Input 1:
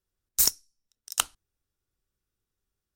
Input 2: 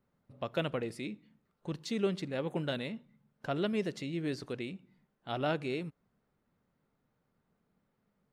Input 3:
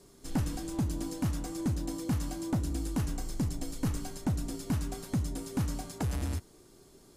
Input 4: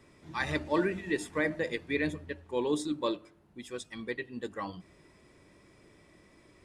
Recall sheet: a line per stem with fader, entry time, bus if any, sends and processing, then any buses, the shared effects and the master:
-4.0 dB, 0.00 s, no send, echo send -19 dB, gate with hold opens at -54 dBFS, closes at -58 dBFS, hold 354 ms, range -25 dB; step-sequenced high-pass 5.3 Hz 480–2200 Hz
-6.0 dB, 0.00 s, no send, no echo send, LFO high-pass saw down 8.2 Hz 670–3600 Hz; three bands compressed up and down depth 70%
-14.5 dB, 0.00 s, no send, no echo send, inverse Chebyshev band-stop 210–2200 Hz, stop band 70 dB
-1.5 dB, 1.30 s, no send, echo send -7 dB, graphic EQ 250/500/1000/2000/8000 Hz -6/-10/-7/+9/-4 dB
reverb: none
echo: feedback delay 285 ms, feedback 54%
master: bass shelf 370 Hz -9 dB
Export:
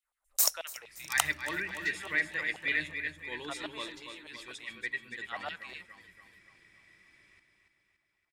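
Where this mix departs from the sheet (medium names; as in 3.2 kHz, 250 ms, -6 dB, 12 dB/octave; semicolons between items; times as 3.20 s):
stem 2: missing three bands compressed up and down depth 70%; stem 3 -14.5 dB -> -26.5 dB; stem 4: entry 1.30 s -> 0.75 s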